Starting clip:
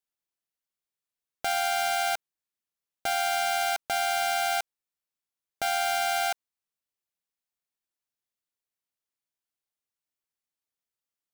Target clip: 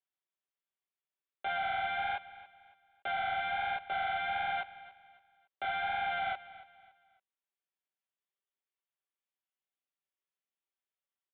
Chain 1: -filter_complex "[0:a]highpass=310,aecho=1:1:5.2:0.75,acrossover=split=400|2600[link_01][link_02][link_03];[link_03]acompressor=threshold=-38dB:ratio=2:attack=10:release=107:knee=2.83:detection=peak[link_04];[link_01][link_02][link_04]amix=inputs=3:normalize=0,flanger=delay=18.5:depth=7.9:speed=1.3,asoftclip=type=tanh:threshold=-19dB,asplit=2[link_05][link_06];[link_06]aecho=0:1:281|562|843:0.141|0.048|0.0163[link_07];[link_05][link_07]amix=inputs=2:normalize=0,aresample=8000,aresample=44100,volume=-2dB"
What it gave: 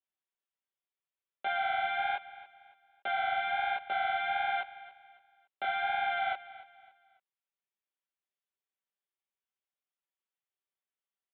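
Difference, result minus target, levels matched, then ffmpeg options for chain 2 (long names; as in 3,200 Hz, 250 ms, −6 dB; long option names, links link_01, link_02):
soft clipping: distortion −10 dB
-filter_complex "[0:a]highpass=310,aecho=1:1:5.2:0.75,acrossover=split=400|2600[link_01][link_02][link_03];[link_03]acompressor=threshold=-38dB:ratio=2:attack=10:release=107:knee=2.83:detection=peak[link_04];[link_01][link_02][link_04]amix=inputs=3:normalize=0,flanger=delay=18.5:depth=7.9:speed=1.3,asoftclip=type=tanh:threshold=-26.5dB,asplit=2[link_05][link_06];[link_06]aecho=0:1:281|562|843:0.141|0.048|0.0163[link_07];[link_05][link_07]amix=inputs=2:normalize=0,aresample=8000,aresample=44100,volume=-2dB"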